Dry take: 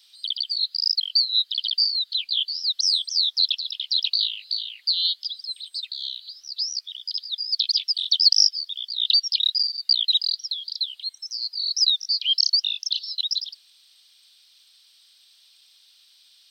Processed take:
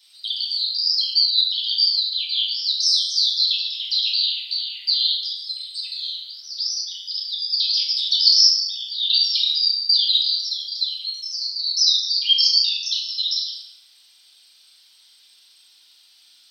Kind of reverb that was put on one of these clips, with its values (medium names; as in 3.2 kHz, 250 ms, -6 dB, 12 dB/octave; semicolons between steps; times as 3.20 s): FDN reverb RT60 1.7 s, low-frequency decay 1.55×, high-frequency decay 0.45×, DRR -7.5 dB; trim -3 dB